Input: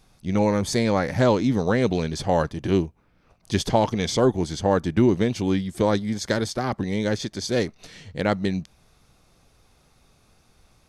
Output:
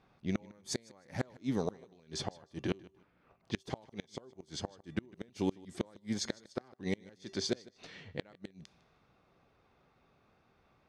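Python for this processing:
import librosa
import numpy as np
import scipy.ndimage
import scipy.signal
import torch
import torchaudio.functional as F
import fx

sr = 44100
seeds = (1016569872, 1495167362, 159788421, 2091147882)

p1 = fx.env_lowpass(x, sr, base_hz=2200.0, full_db=-19.5)
p2 = fx.highpass(p1, sr, hz=190.0, slope=6)
p3 = fx.rider(p2, sr, range_db=4, speed_s=0.5)
p4 = fx.comb_fb(p3, sr, f0_hz=390.0, decay_s=0.28, harmonics='odd', damping=0.0, mix_pct=50)
p5 = fx.gate_flip(p4, sr, shuts_db=-20.0, range_db=-31)
y = p5 + fx.echo_feedback(p5, sr, ms=154, feedback_pct=23, wet_db=-22.0, dry=0)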